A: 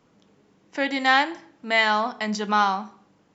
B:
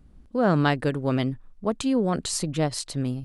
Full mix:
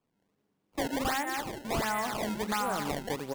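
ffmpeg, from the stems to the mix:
-filter_complex "[0:a]afwtdn=0.0562,volume=-1.5dB,asplit=2[a][b];[b]volume=-10dB[c];[1:a]highpass=f=550:p=1,acrusher=bits=9:dc=4:mix=0:aa=0.000001,adelay=2250,volume=-0.5dB[d];[c]aecho=0:1:189|378|567|756|945:1|0.33|0.109|0.0359|0.0119[e];[a][d][e]amix=inputs=3:normalize=0,acrossover=split=260|3100[f][g][h];[f]acompressor=threshold=-41dB:ratio=4[i];[g]acompressor=threshold=-27dB:ratio=4[j];[h]acompressor=threshold=-47dB:ratio=4[k];[i][j][k]amix=inputs=3:normalize=0,acrusher=samples=21:mix=1:aa=0.000001:lfo=1:lforange=33.6:lforate=1.4,asoftclip=type=tanh:threshold=-22dB"

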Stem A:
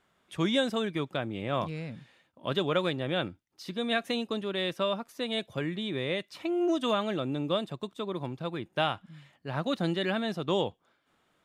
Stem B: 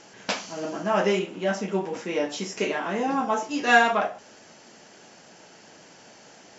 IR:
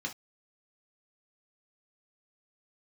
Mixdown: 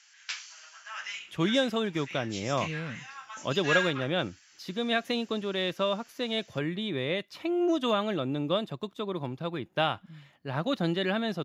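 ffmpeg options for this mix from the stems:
-filter_complex "[0:a]equalizer=f=8.6k:w=6.4:g=-14,adelay=1000,volume=1dB[a];[1:a]highpass=f=1.5k:w=0.5412,highpass=f=1.5k:w=1.3066,volume=-5.5dB[b];[a][b]amix=inputs=2:normalize=0"

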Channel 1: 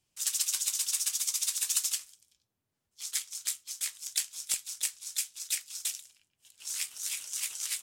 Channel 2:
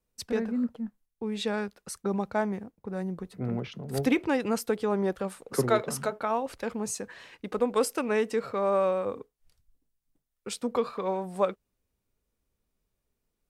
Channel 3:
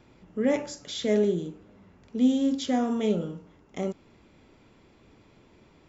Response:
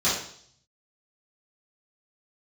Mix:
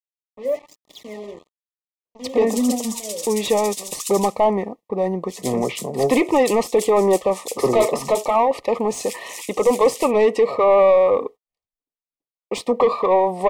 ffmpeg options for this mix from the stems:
-filter_complex "[0:a]highpass=f=1k:w=0.5412,highpass=f=1k:w=1.3066,adelay=2300,volume=-1dB[a];[1:a]agate=range=-29dB:threshold=-50dB:ratio=16:detection=peak,highshelf=f=2.2k:g=8.5,asplit=2[b][c];[c]highpass=f=720:p=1,volume=21dB,asoftclip=type=tanh:threshold=-8.5dB[d];[b][d]amix=inputs=2:normalize=0,lowpass=f=1.1k:p=1,volume=-6dB,adelay=2050,volume=-0.5dB[e];[2:a]highpass=f=190:w=0.5412,highpass=f=190:w=1.3066,aphaser=in_gain=1:out_gain=1:delay=2:decay=0.78:speed=1.1:type=triangular,acrusher=bits=4:mix=0:aa=0.5,volume=-14dB[f];[a][e][f]amix=inputs=3:normalize=0,equalizer=f=590:t=o:w=2.9:g=7.5,asoftclip=type=tanh:threshold=-7dB,asuperstop=centerf=1500:order=20:qfactor=2.8"

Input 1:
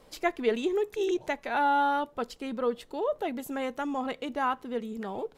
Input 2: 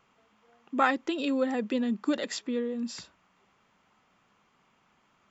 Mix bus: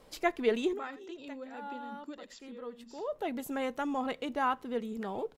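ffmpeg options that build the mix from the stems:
-filter_complex "[0:a]volume=-1.5dB[a];[1:a]bandreject=f=60:t=h:w=6,bandreject=f=120:t=h:w=6,bandreject=f=180:t=h:w=6,bandreject=f=240:t=h:w=6,volume=-17dB,asplit=3[b][c][d];[c]volume=-16.5dB[e];[d]apad=whole_len=236832[f];[a][f]sidechaincompress=threshold=-59dB:ratio=8:attack=6:release=551[g];[e]aecho=0:1:82:1[h];[g][b][h]amix=inputs=3:normalize=0"

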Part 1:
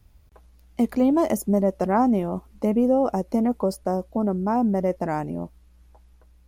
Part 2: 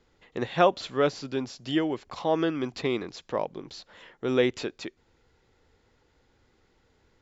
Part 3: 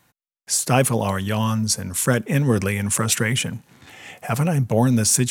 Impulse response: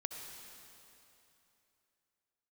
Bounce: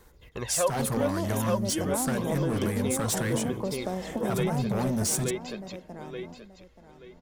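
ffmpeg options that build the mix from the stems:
-filter_complex "[0:a]acrossover=split=140|3000[a][b][c];[b]acompressor=threshold=-35dB:ratio=2[d];[a][d][c]amix=inputs=3:normalize=0,volume=2dB,asplit=3[e][f][g];[f]volume=-11dB[h];[g]volume=-13dB[i];[1:a]aecho=1:1:1.9:0.39,aphaser=in_gain=1:out_gain=1:delay=3.8:decay=0.62:speed=0.38:type=sinusoidal,volume=-2.5dB,asplit=3[j][k][l];[k]volume=-3.5dB[m];[2:a]equalizer=f=2.6k:t=o:w=0.56:g=-14.5,bandreject=f=60:t=h:w=6,bandreject=f=120:t=h:w=6,bandreject=f=180:t=h:w=6,bandreject=f=240:t=h:w=6,bandreject=f=300:t=h:w=6,bandreject=f=360:t=h:w=6,bandreject=f=420:t=h:w=6,bandreject=f=480:t=h:w=6,bandreject=f=540:t=h:w=6,asoftclip=type=hard:threshold=-19.5dB,volume=1dB[n];[l]apad=whole_len=285685[o];[e][o]sidechaingate=range=-33dB:threshold=-56dB:ratio=16:detection=peak[p];[3:a]atrim=start_sample=2205[q];[h][q]afir=irnorm=-1:irlink=0[r];[i][m]amix=inputs=2:normalize=0,aecho=0:1:879|1758|2637|3516:1|0.26|0.0676|0.0176[s];[p][j][n][r][s]amix=inputs=5:normalize=0,acompressor=threshold=-30dB:ratio=2"

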